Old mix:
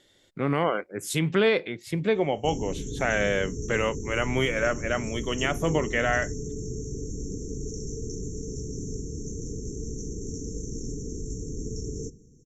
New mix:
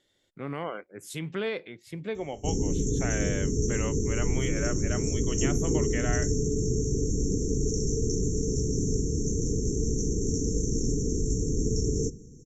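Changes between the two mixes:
speech −9.5 dB
background +7.0 dB

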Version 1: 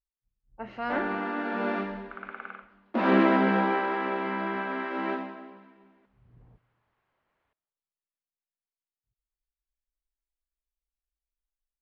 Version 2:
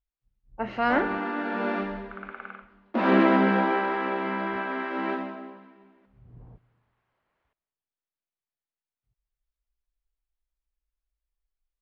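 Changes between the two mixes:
speech +8.0 dB
first sound: send +7.0 dB

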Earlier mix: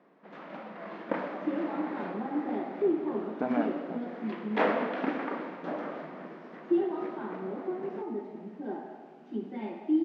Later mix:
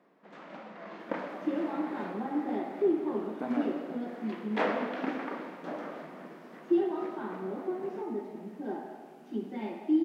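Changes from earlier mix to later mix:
speech −7.0 dB
first sound −3.5 dB
master: remove high-frequency loss of the air 140 metres

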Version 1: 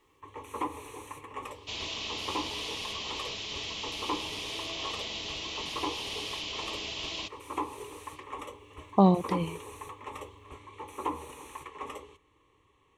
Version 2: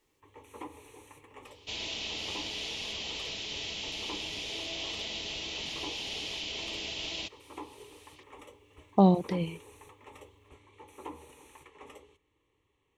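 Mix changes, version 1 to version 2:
first sound −7.5 dB
master: add parametric band 1,100 Hz −9.5 dB 0.3 octaves

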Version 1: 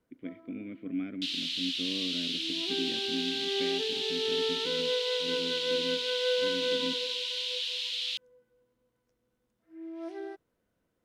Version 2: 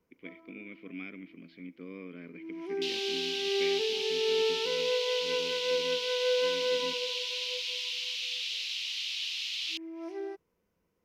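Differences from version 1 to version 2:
speech: add spectral tilt +3.5 dB per octave
second sound: entry +1.60 s
master: add EQ curve with evenly spaced ripples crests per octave 0.8, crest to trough 7 dB

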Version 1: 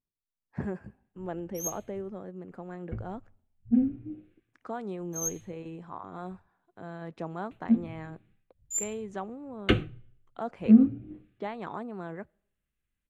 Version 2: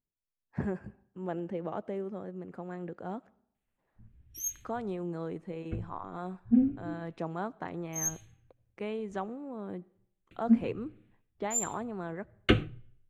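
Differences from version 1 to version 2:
speech: send +10.0 dB
background: entry +2.80 s

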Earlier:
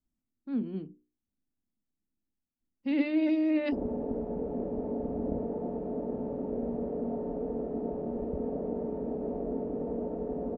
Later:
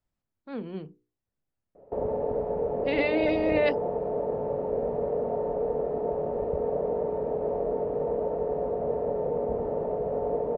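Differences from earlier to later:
background: entry −1.80 s
master: add octave-band graphic EQ 125/250/500/1,000/2,000/4,000 Hz +10/−12/+10/+8/+7/+7 dB

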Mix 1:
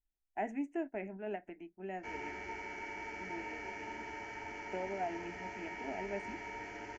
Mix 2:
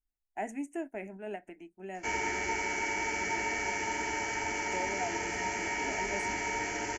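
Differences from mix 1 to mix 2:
background +9.5 dB
master: remove high-frequency loss of the air 190 metres

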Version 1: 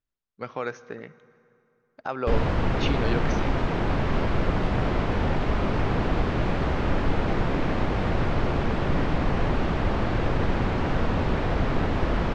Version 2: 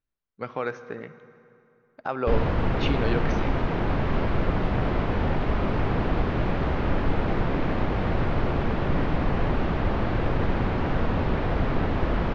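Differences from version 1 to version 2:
speech: send +6.5 dB
master: add high-frequency loss of the air 120 metres

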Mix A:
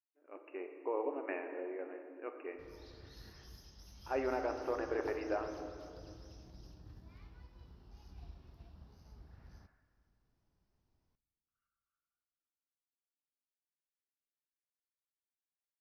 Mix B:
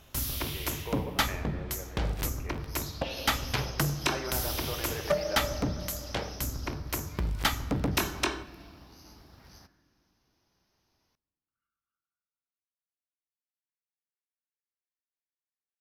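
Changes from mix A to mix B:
first sound: unmuted
second sound +11.0 dB
master: add spectral tilt +3 dB per octave

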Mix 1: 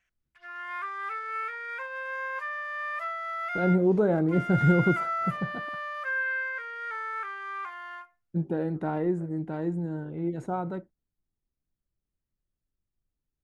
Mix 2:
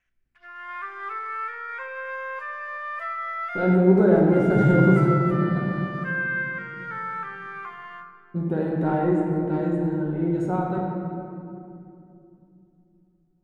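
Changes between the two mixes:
background: add high-shelf EQ 3,700 Hz −7 dB
reverb: on, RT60 2.7 s

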